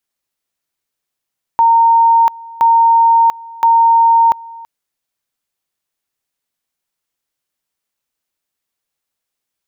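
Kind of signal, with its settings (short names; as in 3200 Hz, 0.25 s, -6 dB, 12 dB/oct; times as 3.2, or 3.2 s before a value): two-level tone 920 Hz -6 dBFS, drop 23 dB, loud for 0.69 s, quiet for 0.33 s, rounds 3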